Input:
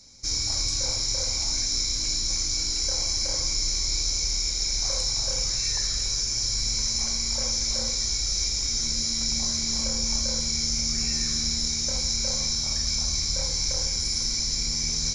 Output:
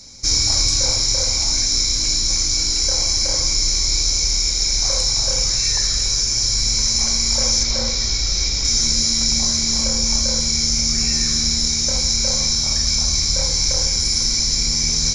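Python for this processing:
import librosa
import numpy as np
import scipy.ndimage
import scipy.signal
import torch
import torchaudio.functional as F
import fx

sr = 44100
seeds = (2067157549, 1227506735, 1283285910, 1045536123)

y = fx.lowpass(x, sr, hz=5200.0, slope=12, at=(7.63, 8.65))
y = fx.rider(y, sr, range_db=10, speed_s=2.0)
y = F.gain(torch.from_numpy(y), 8.0).numpy()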